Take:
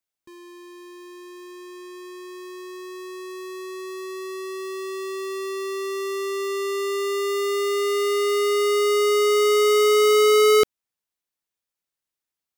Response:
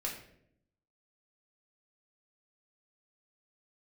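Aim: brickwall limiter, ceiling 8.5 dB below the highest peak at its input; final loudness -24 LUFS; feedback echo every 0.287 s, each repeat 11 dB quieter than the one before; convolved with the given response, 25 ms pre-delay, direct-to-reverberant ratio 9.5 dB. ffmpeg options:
-filter_complex "[0:a]alimiter=limit=-23dB:level=0:latency=1,aecho=1:1:287|574|861:0.282|0.0789|0.0221,asplit=2[a][b];[1:a]atrim=start_sample=2205,adelay=25[c];[b][c]afir=irnorm=-1:irlink=0,volume=-11.5dB[d];[a][d]amix=inputs=2:normalize=0,volume=1dB"

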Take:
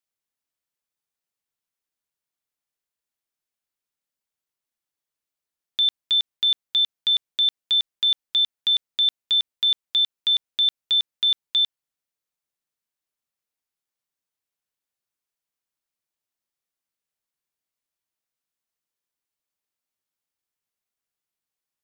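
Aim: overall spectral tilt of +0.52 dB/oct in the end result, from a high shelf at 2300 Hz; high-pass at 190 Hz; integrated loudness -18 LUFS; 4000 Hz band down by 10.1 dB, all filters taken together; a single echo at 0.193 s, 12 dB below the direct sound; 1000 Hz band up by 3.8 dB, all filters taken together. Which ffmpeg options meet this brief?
-af "highpass=190,equalizer=f=1k:t=o:g=7,highshelf=f=2.3k:g=-8.5,equalizer=f=4k:t=o:g=-5,aecho=1:1:193:0.251,volume=12dB"

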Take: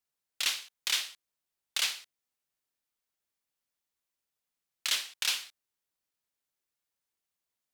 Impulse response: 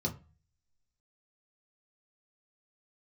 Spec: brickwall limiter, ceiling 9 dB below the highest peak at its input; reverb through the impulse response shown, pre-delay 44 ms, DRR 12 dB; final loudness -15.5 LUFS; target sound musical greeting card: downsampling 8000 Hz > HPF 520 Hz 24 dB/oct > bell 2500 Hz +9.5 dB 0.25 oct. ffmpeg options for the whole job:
-filter_complex "[0:a]alimiter=limit=-23.5dB:level=0:latency=1,asplit=2[a][b];[1:a]atrim=start_sample=2205,adelay=44[c];[b][c]afir=irnorm=-1:irlink=0,volume=-15.5dB[d];[a][d]amix=inputs=2:normalize=0,aresample=8000,aresample=44100,highpass=f=520:w=0.5412,highpass=f=520:w=1.3066,equalizer=f=2.5k:t=o:w=0.25:g=9.5,volume=20.5dB"

